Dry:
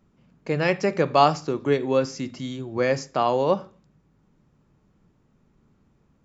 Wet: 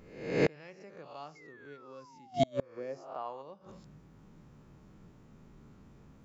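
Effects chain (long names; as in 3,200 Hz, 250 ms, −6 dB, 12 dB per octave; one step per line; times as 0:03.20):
peak hold with a rise ahead of every peak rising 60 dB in 0.67 s
0:02.76–0:03.41: parametric band 310 Hz → 1,400 Hz +13 dB 2.4 octaves
0:01.35–0:03.04: sound drawn into the spectrogram fall 340–2,200 Hz −27 dBFS
gate with flip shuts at −18 dBFS, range −34 dB
level +4 dB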